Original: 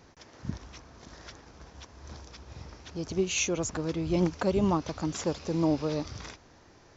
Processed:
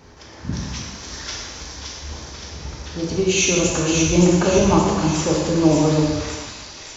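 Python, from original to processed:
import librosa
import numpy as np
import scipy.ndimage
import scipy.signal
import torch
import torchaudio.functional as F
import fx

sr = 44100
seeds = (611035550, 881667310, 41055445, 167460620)

p1 = fx.high_shelf(x, sr, hz=2400.0, db=11.5, at=(0.53, 1.64))
p2 = p1 + fx.echo_wet_highpass(p1, sr, ms=570, feedback_pct=55, hz=2200.0, wet_db=-3.5, dry=0)
p3 = fx.rev_gated(p2, sr, seeds[0], gate_ms=480, shape='falling', drr_db=-3.5)
y = F.gain(torch.from_numpy(p3), 6.5).numpy()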